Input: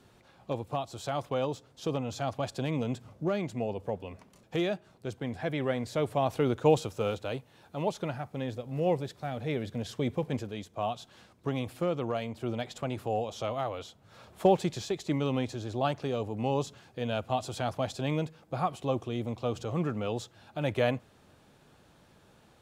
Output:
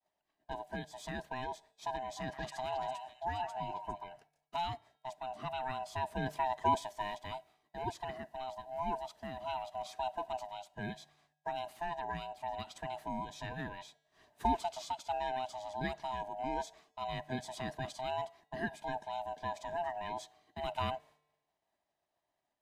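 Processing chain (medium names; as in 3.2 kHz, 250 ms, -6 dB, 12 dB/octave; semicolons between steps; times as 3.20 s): split-band scrambler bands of 500 Hz; bass shelf 130 Hz -8.5 dB; expander -48 dBFS; feedback comb 150 Hz, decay 1.1 s, harmonics odd, mix 40%; 2.03–4.04 s: repeats whose band climbs or falls 135 ms, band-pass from 1.2 kHz, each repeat 1.4 oct, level -2.5 dB; trim -2 dB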